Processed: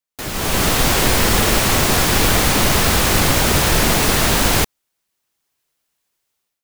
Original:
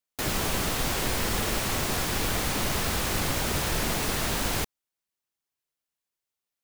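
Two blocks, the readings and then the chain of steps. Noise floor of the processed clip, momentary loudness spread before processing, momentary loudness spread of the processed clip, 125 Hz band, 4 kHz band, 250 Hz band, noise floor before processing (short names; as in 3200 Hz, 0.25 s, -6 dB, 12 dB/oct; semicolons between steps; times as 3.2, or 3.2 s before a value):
-77 dBFS, 1 LU, 4 LU, +12.0 dB, +12.0 dB, +12.0 dB, under -85 dBFS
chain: AGC gain up to 14.5 dB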